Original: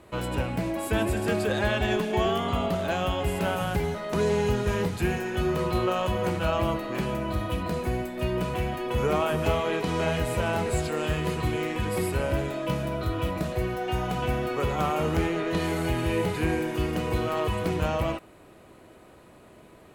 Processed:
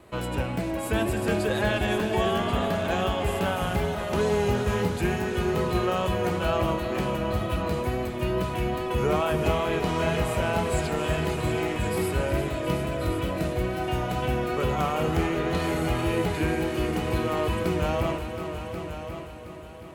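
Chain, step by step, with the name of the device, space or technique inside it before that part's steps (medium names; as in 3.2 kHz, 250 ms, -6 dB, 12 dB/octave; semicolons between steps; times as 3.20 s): multi-head tape echo (multi-head delay 361 ms, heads all three, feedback 44%, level -12.5 dB; wow and flutter 23 cents)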